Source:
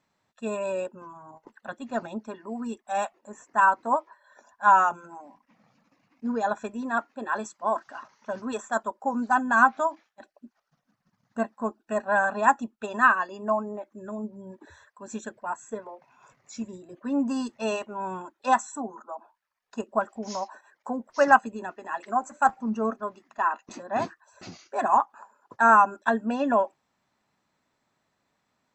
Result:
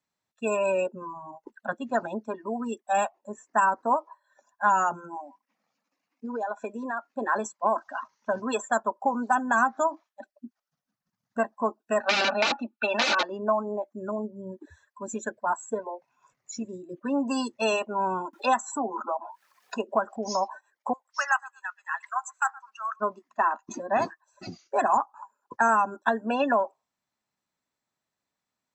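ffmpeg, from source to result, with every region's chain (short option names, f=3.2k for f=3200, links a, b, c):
-filter_complex "[0:a]asettb=1/sr,asplit=3[a][b][c];[a]atrim=end=5.164[d];[b]atrim=start=5.16:end=7.07,asetpts=PTS-STARTPTS,afade=t=in:d=0.004:c=qsin,afade=t=out:st=1.906:d=0.004:c=qsin,highpass=300,acompressor=threshold=-33dB:ratio=12:attack=3.2:release=140:knee=1:detection=peak[e];[c]atrim=start=7.066[f];[d][e]acrossfade=d=0.004:c1=hsin:c2=qsin[g];[g][f]acrossfade=d=0.004:c1=qsin:c2=hsin,asettb=1/sr,asplit=3[h][i][j];[h]atrim=end=12.004[k];[i]atrim=start=12:end=13.23,asetpts=PTS-STARTPTS,afade=t=in:d=0.004:c=qsin,afade=t=out:st=1.226:d=0.004:c=qsin,aeval=exprs='(mod(10*val(0)+1,2)-1)/10':c=same,highpass=220,equalizer=f=330:t=q:w=4:g=-5,equalizer=f=780:t=q:w=4:g=5,equalizer=f=1.4k:t=q:w=4:g=8,equalizer=f=2.5k:t=q:w=4:g=10,equalizer=f=4k:t=q:w=4:g=6,lowpass=f=6k:w=0.5412,lowpass=f=6k:w=1.3066,aecho=1:1:3.4:0.56,atrim=end_sample=54243[l];[j]atrim=start=13.226[m];[k][l]acrossfade=d=0.004:c1=hsin:c2=qsin[n];[n][m]acrossfade=d=0.004:c1=qsin:c2=hsin,asettb=1/sr,asplit=3[o][p][q];[o]atrim=end=18.334[r];[p]atrim=start=18.33:end=20.16,asetpts=PTS-STARTPTS,afade=t=in:d=0.004:c=qsin,afade=t=out:st=1.826:d=0.004:c=qsin,highshelf=f=5.2k:g=-6,acompressor=mode=upward:threshold=-29dB:ratio=2.5:attack=3.2:release=140:knee=2.83:detection=peak,highpass=180[s];[q]atrim=start=20.156[t];[r][s]acrossfade=d=0.004:c1=hsin:c2=qsin[u];[u][t]acrossfade=d=0.004:c1=qsin:c2=hsin,asettb=1/sr,asplit=3[v][w][x];[v]atrim=end=20.934[y];[w]atrim=start=20.93:end=23,asetpts=PTS-STARTPTS,afade=t=in:d=0.004:c=qsin,afade=t=out:st=2.066:d=0.004:c=qsin,highpass=f=1.2k:w=0.5412,highpass=f=1.2k:w=1.3066,asplit=2[z][aa];[aa]adelay=118,lowpass=f=2k:p=1,volume=-20.5dB,asplit=2[ab][ac];[ac]adelay=118,lowpass=f=2k:p=1,volume=0.29[ad];[z][ab][ad]amix=inputs=3:normalize=0,atrim=end_sample=91287[ae];[x]atrim=start=22.996[af];[y][ae]acrossfade=d=0.004:c1=hsin:c2=qsin[ag];[ag][af]acrossfade=d=0.004:c1=qsin:c2=hsin,afftdn=nr=20:nf=-40,highshelf=f=4k:g=10,acrossover=split=320|890|4200[ah][ai][aj][ak];[ah]acompressor=threshold=-45dB:ratio=4[al];[ai]acompressor=threshold=-32dB:ratio=4[am];[aj]acompressor=threshold=-35dB:ratio=4[an];[ak]acompressor=threshold=-47dB:ratio=4[ao];[al][am][an][ao]amix=inputs=4:normalize=0,volume=6.5dB"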